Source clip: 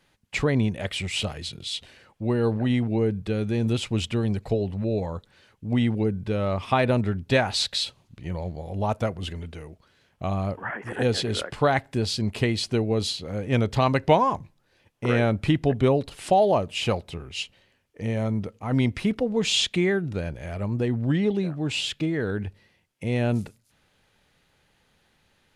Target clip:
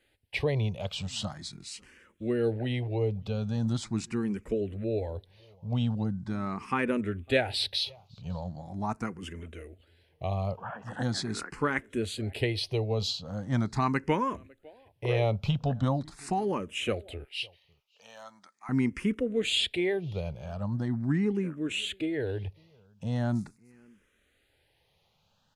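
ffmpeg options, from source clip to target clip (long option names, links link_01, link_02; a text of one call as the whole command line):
ffmpeg -i in.wav -filter_complex "[0:a]asettb=1/sr,asplit=3[link_01][link_02][link_03];[link_01]atrim=end=17.244[link_04];[link_02]atrim=start=17.24:end=18.69,asetpts=PTS-STARTPTS,afade=type=in:duration=0.004:curve=qsin,afade=type=out:start_time=1.446:duration=0.004:curve=qsin,highpass=1200[link_05];[link_03]atrim=start=18.686[link_06];[link_04][link_05]acrossfade=duration=0.004:curve1=hsin:curve2=qsin[link_07];[link_07][link_06]acrossfade=duration=0.004:curve1=qsin:curve2=hsin,asettb=1/sr,asplit=3[link_08][link_09][link_10];[link_08]atrim=end=20.334[link_11];[link_09]atrim=start=20.33:end=21.04,asetpts=PTS-STARTPTS,afade=type=in:duration=0.004:curve=qsin,afade=type=out:start_time=0.706:duration=0.004:curve=qsin,bandreject=frequency=7000:width=5.5[link_12];[link_10]atrim=start=21.036[link_13];[link_11][link_12]acrossfade=duration=0.004:curve1=hsin:curve2=qsin[link_14];[link_14][link_13]acrossfade=duration=0.004:curve1=qsin:curve2=hsin,asplit=2[link_15][link_16];[link_16]adelay=553.9,volume=-27dB,highshelf=frequency=4000:gain=-12.5[link_17];[link_15][link_17]amix=inputs=2:normalize=0,asplit=2[link_18][link_19];[link_19]afreqshift=0.41[link_20];[link_18][link_20]amix=inputs=2:normalize=1,volume=-2.5dB" out.wav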